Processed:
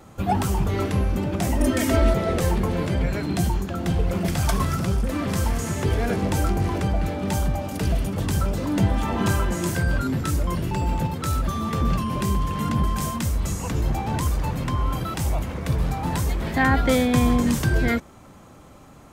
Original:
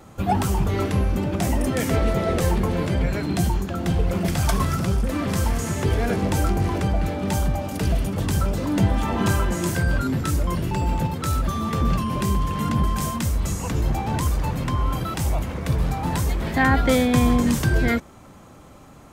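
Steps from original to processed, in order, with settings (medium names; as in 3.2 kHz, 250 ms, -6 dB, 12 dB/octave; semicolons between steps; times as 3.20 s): 1.60–2.14 s: comb 3.2 ms, depth 96%; trim -1 dB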